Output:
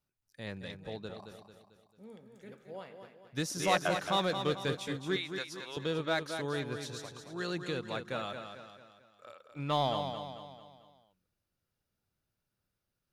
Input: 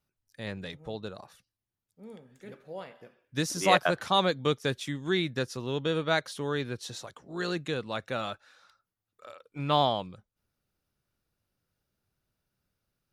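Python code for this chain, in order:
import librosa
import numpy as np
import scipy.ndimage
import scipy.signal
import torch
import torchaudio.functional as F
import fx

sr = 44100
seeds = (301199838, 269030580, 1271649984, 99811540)

p1 = fx.highpass(x, sr, hz=790.0, slope=12, at=(5.16, 5.77))
p2 = 10.0 ** (-22.5 / 20.0) * (np.abs((p1 / 10.0 ** (-22.5 / 20.0) + 3.0) % 4.0 - 2.0) - 1.0)
p3 = p1 + (p2 * 10.0 ** (-11.5 / 20.0))
p4 = fx.echo_feedback(p3, sr, ms=222, feedback_pct=46, wet_db=-7.5)
y = p4 * 10.0 ** (-6.5 / 20.0)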